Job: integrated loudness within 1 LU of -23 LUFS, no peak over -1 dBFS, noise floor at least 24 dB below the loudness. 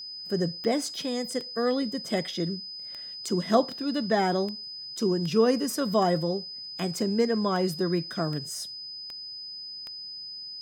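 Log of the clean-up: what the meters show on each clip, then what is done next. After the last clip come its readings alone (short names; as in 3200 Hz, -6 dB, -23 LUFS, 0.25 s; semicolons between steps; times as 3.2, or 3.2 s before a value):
clicks 13; steady tone 5000 Hz; tone level -37 dBFS; loudness -28.5 LUFS; peak -9.5 dBFS; loudness target -23.0 LUFS
-> de-click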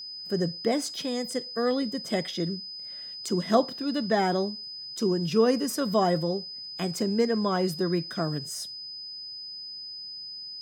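clicks 0; steady tone 5000 Hz; tone level -37 dBFS
-> notch 5000 Hz, Q 30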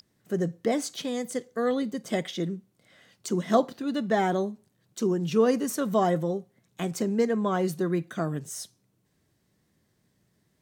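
steady tone none; loudness -28.0 LUFS; peak -9.5 dBFS; loudness target -23.0 LUFS
-> gain +5 dB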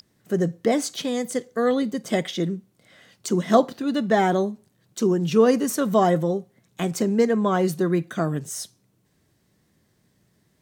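loudness -23.0 LUFS; peak -4.5 dBFS; noise floor -67 dBFS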